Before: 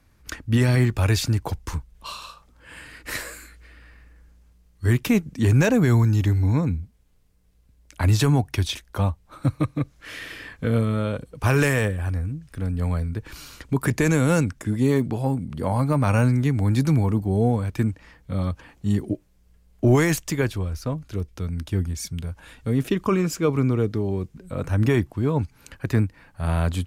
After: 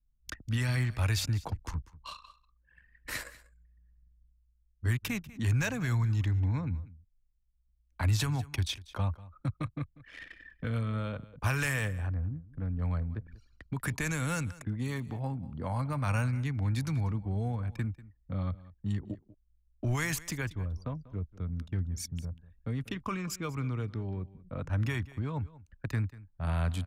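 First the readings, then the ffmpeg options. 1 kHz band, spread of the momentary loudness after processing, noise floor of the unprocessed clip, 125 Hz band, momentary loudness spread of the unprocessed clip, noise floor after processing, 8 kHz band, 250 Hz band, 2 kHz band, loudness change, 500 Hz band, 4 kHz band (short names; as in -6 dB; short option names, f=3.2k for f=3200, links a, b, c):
-9.5 dB, 12 LU, -58 dBFS, -9.0 dB, 14 LU, -70 dBFS, -7.0 dB, -14.0 dB, -7.0 dB, -10.5 dB, -17.0 dB, -7.0 dB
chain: -filter_complex "[0:a]anlmdn=6.31,acrossover=split=120|1000[a][b][c];[b]acompressor=threshold=-28dB:ratio=6[d];[a][d][c]amix=inputs=3:normalize=0,equalizer=f=390:w=2:g=-5,aecho=1:1:192:0.112,volume=-6.5dB"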